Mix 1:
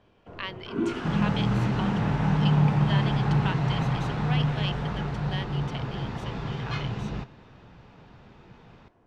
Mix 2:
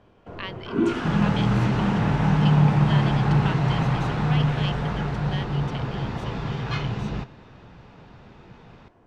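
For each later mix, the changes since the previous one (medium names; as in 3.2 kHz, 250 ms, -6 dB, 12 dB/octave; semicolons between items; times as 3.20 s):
first sound +5.5 dB; second sound +3.5 dB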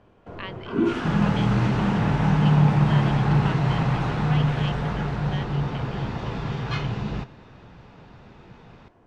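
speech: add distance through air 170 m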